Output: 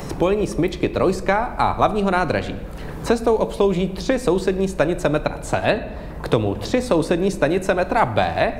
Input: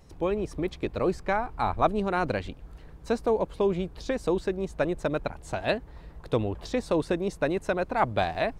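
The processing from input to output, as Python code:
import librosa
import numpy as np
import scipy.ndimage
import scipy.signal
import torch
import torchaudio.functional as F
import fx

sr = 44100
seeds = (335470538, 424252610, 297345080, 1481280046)

y = fx.high_shelf(x, sr, hz=7100.0, db=7.5)
y = fx.room_shoebox(y, sr, seeds[0], volume_m3=270.0, walls='mixed', distance_m=0.31)
y = fx.band_squash(y, sr, depth_pct=70)
y = y * librosa.db_to_amplitude(7.5)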